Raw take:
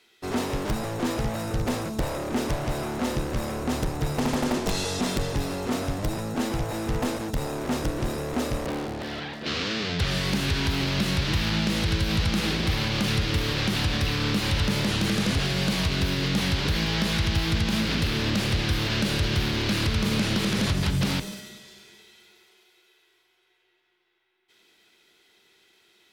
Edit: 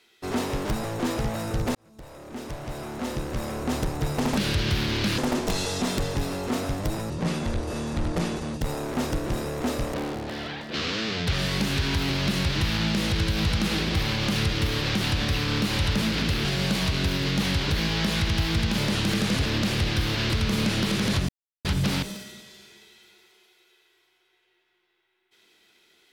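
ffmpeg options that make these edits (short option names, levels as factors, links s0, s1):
-filter_complex "[0:a]asplit=12[s0][s1][s2][s3][s4][s5][s6][s7][s8][s9][s10][s11];[s0]atrim=end=1.75,asetpts=PTS-STARTPTS,afade=t=out:st=1.746:d=0.004:c=hsin[s12];[s1]atrim=start=1.75:end=4.372,asetpts=PTS-STARTPTS,afade=t=in:d=1.99[s13];[s2]atrim=start=19.018:end=19.832[s14];[s3]atrim=start=4.368:end=6.294[s15];[s4]atrim=start=6.29:end=7.33,asetpts=PTS-STARTPTS,asetrate=30429,aresample=44100[s16];[s5]atrim=start=7.326:end=14.742[s17];[s6]atrim=start=17.748:end=18.182[s18];[s7]atrim=start=15.418:end=17.752[s19];[s8]atrim=start=14.738:end=15.422[s20];[s9]atrim=start=18.178:end=19.022[s21];[s10]atrim=start=19.828:end=20.82,asetpts=PTS-STARTPTS,afade=t=out:st=0.988:d=0.004:c=hsin,apad=pad_dur=0.36[s22];[s11]atrim=start=20.82,asetpts=PTS-STARTPTS,afade=t=in:d=0.004:c=hsin[s23];[s12][s13]concat=n=2:v=0:a=1[s24];[s24][s14]acrossfade=d=0.004:c1=hsin:c2=hsin[s25];[s25][s15]acrossfade=d=0.004:c1=hsin:c2=hsin[s26];[s26][s16]acrossfade=d=0.004:c1=hsin:c2=hsin[s27];[s27][s17]acrossfade=d=0.004:c1=hsin:c2=hsin[s28];[s28][s18]acrossfade=d=0.004:c1=hsin:c2=hsin[s29];[s29][s19]acrossfade=d=0.004:c1=hsin:c2=hsin[s30];[s30][s20]acrossfade=d=0.004:c1=hsin:c2=hsin[s31];[s31][s21]acrossfade=d=0.004:c1=hsin:c2=hsin[s32];[s22][s23]concat=n=2:v=0:a=1[s33];[s32][s33]acrossfade=d=0.004:c1=hsin:c2=hsin"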